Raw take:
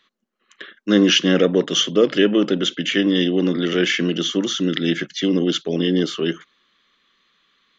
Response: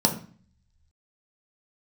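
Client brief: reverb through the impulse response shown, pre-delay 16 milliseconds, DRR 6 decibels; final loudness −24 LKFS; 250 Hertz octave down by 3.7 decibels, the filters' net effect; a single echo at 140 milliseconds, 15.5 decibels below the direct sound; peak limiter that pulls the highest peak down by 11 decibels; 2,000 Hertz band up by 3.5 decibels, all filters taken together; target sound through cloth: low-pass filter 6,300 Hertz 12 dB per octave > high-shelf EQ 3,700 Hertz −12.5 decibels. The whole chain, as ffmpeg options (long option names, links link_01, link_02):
-filter_complex "[0:a]equalizer=frequency=250:width_type=o:gain=-5,equalizer=frequency=2000:width_type=o:gain=8,alimiter=limit=-11dB:level=0:latency=1,aecho=1:1:140:0.168,asplit=2[link_01][link_02];[1:a]atrim=start_sample=2205,adelay=16[link_03];[link_02][link_03]afir=irnorm=-1:irlink=0,volume=-19dB[link_04];[link_01][link_04]amix=inputs=2:normalize=0,lowpass=6300,highshelf=frequency=3700:gain=-12.5,volume=-3dB"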